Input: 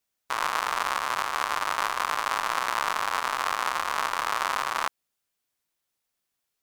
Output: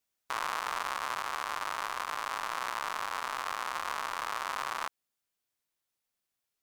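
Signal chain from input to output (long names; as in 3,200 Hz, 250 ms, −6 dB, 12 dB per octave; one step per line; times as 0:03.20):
brickwall limiter −14.5 dBFS, peak gain reduction 6.5 dB
speech leveller within 3 dB 2 s
level −4.5 dB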